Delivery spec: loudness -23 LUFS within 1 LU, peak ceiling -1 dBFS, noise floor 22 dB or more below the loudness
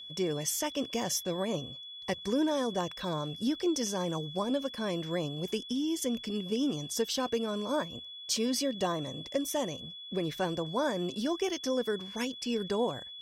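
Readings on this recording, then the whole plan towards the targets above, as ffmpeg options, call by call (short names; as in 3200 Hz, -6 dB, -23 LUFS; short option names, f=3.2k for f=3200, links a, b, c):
steady tone 3400 Hz; tone level -43 dBFS; loudness -32.5 LUFS; peak -16.5 dBFS; loudness target -23.0 LUFS
-> -af "bandreject=f=3.4k:w=30"
-af "volume=9.5dB"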